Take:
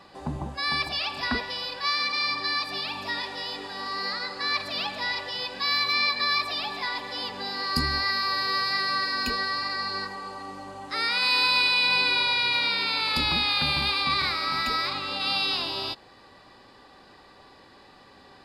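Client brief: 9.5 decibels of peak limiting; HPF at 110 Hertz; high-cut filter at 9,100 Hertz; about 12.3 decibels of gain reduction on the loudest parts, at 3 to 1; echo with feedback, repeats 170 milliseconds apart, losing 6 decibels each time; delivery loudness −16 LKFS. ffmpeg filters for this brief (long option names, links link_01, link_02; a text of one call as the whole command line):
ffmpeg -i in.wav -af "highpass=110,lowpass=9100,acompressor=threshold=-36dB:ratio=3,alimiter=level_in=7.5dB:limit=-24dB:level=0:latency=1,volume=-7.5dB,aecho=1:1:170|340|510|680|850|1020:0.501|0.251|0.125|0.0626|0.0313|0.0157,volume=22dB" out.wav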